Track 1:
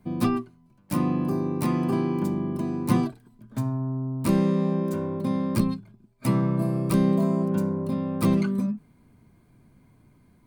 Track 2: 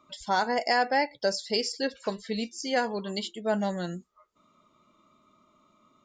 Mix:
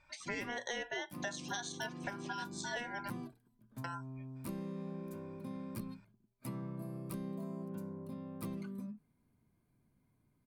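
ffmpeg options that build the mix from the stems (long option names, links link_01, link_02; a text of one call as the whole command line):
ffmpeg -i stem1.wav -i stem2.wav -filter_complex "[0:a]equalizer=frequency=12000:width=2.3:gain=10.5,adelay=200,volume=-17.5dB[link_01];[1:a]aeval=exprs='val(0)*sin(2*PI*1200*n/s)':channel_layout=same,volume=-2.5dB,asplit=3[link_02][link_03][link_04];[link_02]atrim=end=3.1,asetpts=PTS-STARTPTS,afade=type=out:start_time=3.096:duration=0.004:curve=hsin[link_05];[link_03]atrim=start=3.1:end=3.84,asetpts=PTS-STARTPTS,volume=0[link_06];[link_04]atrim=start=3.84,asetpts=PTS-STARTPTS,afade=type=in:duration=0.004:curve=hsin[link_07];[link_05][link_06][link_07]concat=n=3:v=0:a=1[link_08];[link_01][link_08]amix=inputs=2:normalize=0,acompressor=threshold=-38dB:ratio=4" out.wav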